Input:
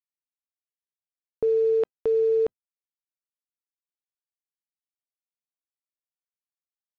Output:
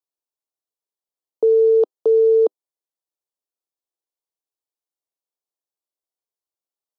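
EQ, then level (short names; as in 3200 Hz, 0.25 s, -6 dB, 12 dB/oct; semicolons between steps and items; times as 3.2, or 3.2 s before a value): steep high-pass 320 Hz 36 dB/oct; Butterworth band-stop 2000 Hz, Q 0.89; tilt shelf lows +4 dB; +5.0 dB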